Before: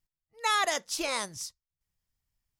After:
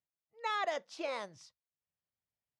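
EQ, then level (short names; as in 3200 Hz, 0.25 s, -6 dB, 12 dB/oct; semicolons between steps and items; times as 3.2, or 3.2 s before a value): BPF 120–3500 Hz; bell 580 Hz +7.5 dB 0.84 oct; -9.0 dB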